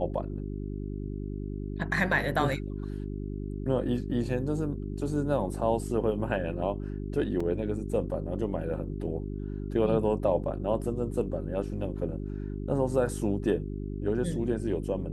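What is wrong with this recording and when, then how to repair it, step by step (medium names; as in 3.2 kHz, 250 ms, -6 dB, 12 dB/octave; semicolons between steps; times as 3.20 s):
hum 50 Hz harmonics 8 -35 dBFS
7.40 s: dropout 4.1 ms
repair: de-hum 50 Hz, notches 8; interpolate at 7.40 s, 4.1 ms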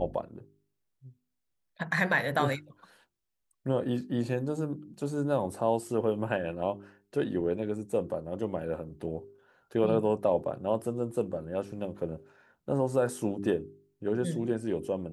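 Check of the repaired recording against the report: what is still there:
nothing left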